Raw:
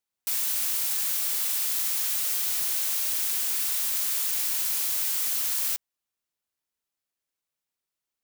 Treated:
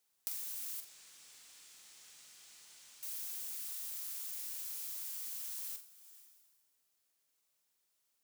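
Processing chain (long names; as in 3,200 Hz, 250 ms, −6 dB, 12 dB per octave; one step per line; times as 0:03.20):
hard clipping −20.5 dBFS, distortion −21 dB
bass and treble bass −3 dB, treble +5 dB
coupled-rooms reverb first 0.42 s, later 1.5 s, from −16 dB, DRR 12 dB
downward compressor 16 to 1, threshold −43 dBFS, peak gain reduction 24 dB
0:00.80–0:03.03: drawn EQ curve 160 Hz 0 dB, 580 Hz −7 dB, 2,400 Hz −5 dB, 7,700 Hz −10 dB, 14,000 Hz −25 dB
flutter between parallel walls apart 7.5 metres, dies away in 0.28 s
speech leveller 0.5 s
level +3 dB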